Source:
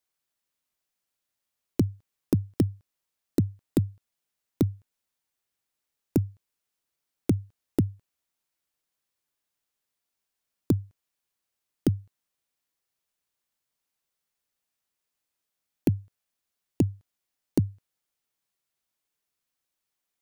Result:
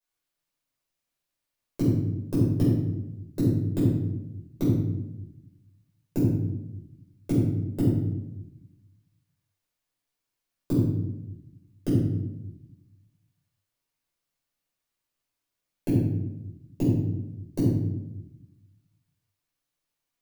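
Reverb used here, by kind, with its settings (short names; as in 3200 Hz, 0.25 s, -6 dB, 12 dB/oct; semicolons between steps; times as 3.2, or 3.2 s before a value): shoebox room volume 320 m³, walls mixed, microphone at 5.3 m; gain -12 dB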